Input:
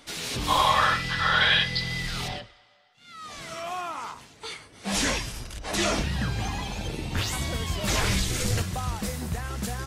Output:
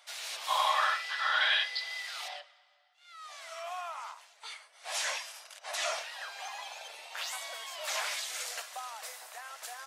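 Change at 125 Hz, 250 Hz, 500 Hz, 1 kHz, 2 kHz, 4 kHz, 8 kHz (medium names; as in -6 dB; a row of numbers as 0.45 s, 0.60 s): under -40 dB, under -40 dB, -10.0 dB, -6.5 dB, -6.0 dB, -6.5 dB, -7.0 dB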